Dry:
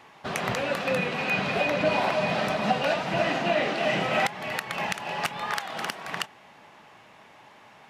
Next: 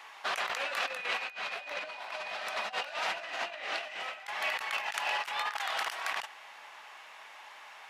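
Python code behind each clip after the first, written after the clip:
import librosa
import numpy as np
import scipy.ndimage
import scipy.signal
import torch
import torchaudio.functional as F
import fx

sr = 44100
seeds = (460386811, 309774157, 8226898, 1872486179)

y = scipy.signal.sosfilt(scipy.signal.butter(2, 970.0, 'highpass', fs=sr, output='sos'), x)
y = fx.over_compress(y, sr, threshold_db=-35.0, ratio=-0.5)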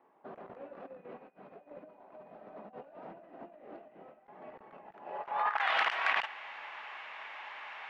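y = fx.filter_sweep_lowpass(x, sr, from_hz=300.0, to_hz=2500.0, start_s=5.02, end_s=5.71, q=1.2)
y = y * librosa.db_to_amplitude(3.5)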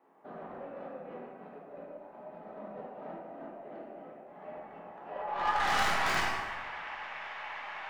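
y = fx.tracing_dist(x, sr, depth_ms=0.22)
y = 10.0 ** (-27.5 / 20.0) * np.tanh(y / 10.0 ** (-27.5 / 20.0))
y = fx.rev_plate(y, sr, seeds[0], rt60_s=1.7, hf_ratio=0.5, predelay_ms=0, drr_db=-5.5)
y = y * librosa.db_to_amplitude(-2.5)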